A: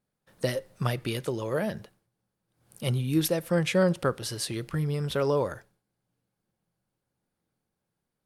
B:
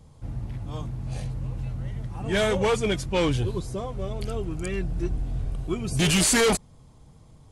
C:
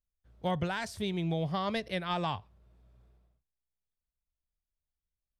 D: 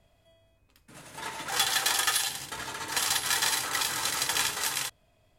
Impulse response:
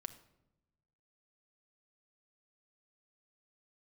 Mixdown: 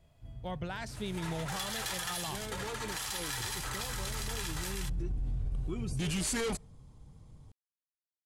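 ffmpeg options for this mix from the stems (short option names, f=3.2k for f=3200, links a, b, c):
-filter_complex "[1:a]lowshelf=f=180:g=7.5,bandreject=f=660:w=15,volume=-8dB,afade=t=in:st=3.36:d=0.51:silence=0.251189,asplit=2[a][b];[b]volume=-23.5dB[c];[2:a]dynaudnorm=f=180:g=7:m=7dB,volume=-10.5dB[d];[3:a]volume=-4.5dB,asplit=2[e][f];[f]volume=-15.5dB[g];[4:a]atrim=start_sample=2205[h];[c][g]amix=inputs=2:normalize=0[i];[i][h]afir=irnorm=-1:irlink=0[j];[a][d][e][j]amix=inputs=4:normalize=0,alimiter=level_in=3.5dB:limit=-24dB:level=0:latency=1:release=59,volume=-3.5dB"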